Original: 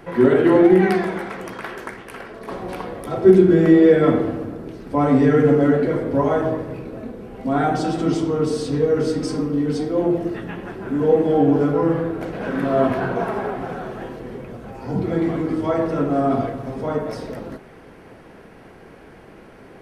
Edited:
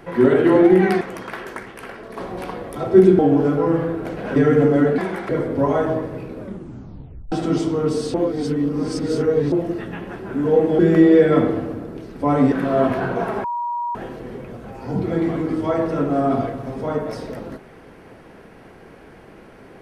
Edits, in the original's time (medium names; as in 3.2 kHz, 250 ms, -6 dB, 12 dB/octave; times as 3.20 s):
1.01–1.32 s: move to 5.85 s
3.50–5.23 s: swap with 11.35–12.52 s
6.92 s: tape stop 0.96 s
8.70–10.08 s: reverse
13.44–13.95 s: bleep 956 Hz -21.5 dBFS